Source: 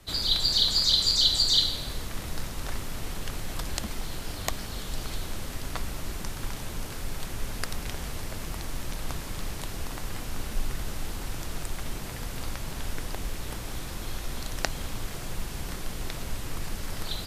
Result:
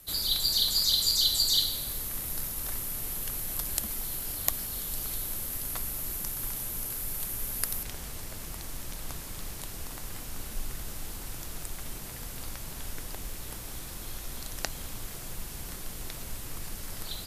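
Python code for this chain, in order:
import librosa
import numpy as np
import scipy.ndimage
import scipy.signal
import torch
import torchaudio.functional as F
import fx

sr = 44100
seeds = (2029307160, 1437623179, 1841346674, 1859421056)

y = fx.high_shelf(x, sr, hz=7000.0, db=11.0)
y = fx.dmg_crackle(y, sr, seeds[0], per_s=21.0, level_db=-40.0)
y = fx.peak_eq(y, sr, hz=12000.0, db=fx.steps((0.0, 14.5), (7.83, 2.0)), octaves=0.53)
y = F.gain(torch.from_numpy(y), -6.5).numpy()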